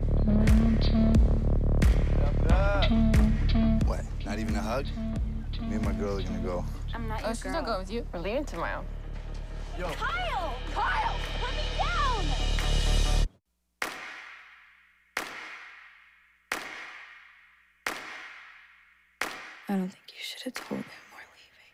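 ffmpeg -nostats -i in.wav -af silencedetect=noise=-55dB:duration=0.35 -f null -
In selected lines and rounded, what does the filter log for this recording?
silence_start: 13.36
silence_end: 13.82 | silence_duration: 0.46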